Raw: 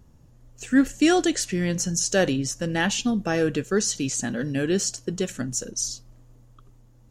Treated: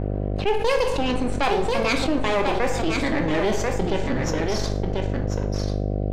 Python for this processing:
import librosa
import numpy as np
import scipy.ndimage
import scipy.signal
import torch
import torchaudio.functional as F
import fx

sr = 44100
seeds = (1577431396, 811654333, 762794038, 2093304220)

p1 = fx.speed_glide(x, sr, from_pct=163, to_pct=69)
p2 = scipy.signal.sosfilt(scipy.signal.butter(2, 4300.0, 'lowpass', fs=sr, output='sos'), p1)
p3 = fx.transient(p2, sr, attack_db=-1, sustain_db=-6)
p4 = np.maximum(p3, 0.0)
p5 = fx.dmg_buzz(p4, sr, base_hz=50.0, harmonics=15, level_db=-46.0, tilt_db=-5, odd_only=False)
p6 = fx.env_lowpass(p5, sr, base_hz=2600.0, full_db=-20.5)
p7 = p6 + fx.echo_single(p6, sr, ms=1040, db=-9.0, dry=0)
p8 = fx.rev_plate(p7, sr, seeds[0], rt60_s=0.69, hf_ratio=0.75, predelay_ms=0, drr_db=5.5)
y = fx.env_flatten(p8, sr, amount_pct=70)